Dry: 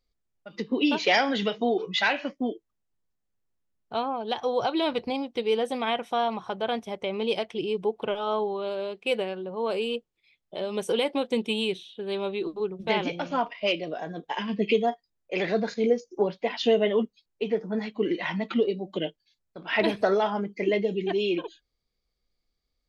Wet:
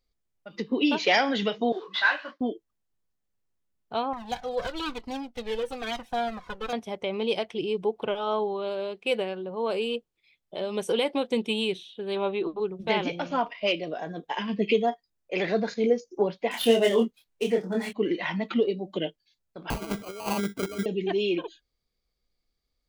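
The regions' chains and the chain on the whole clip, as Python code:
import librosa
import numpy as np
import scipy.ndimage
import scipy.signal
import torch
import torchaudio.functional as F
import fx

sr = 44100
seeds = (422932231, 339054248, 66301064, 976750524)

y = fx.chain(x, sr, fx.cvsd(bps=64000),
    fx.cabinet(low_hz=430.0, low_slope=12, high_hz=4800.0, hz=(470.0, 770.0, 1100.0, 1600.0, 2400.0, 4000.0), db=(-6, -4, 10, 9, -6, 5)),
    fx.detune_double(cents=40), at=(1.72, 2.41))
y = fx.chain(y, sr, fx.lower_of_two(delay_ms=4.0),
    fx.comb_cascade(direction='falling', hz=1.1), at=(4.13, 6.73))
y = fx.chain(y, sr, fx.lowpass(hz=3800.0, slope=24),
    fx.peak_eq(hz=900.0, db=6.0, octaves=1.5), at=(12.16, 12.6))
y = fx.chain(y, sr, fx.median_filter(points=9),
    fx.high_shelf(hz=3100.0, db=9.0),
    fx.doubler(ms=26.0, db=-3), at=(16.51, 17.93))
y = fx.chain(y, sr, fx.air_absorb(metres=240.0),
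    fx.over_compress(threshold_db=-30.0, ratio=-0.5),
    fx.sample_hold(seeds[0], rate_hz=1800.0, jitter_pct=0), at=(19.7, 20.86))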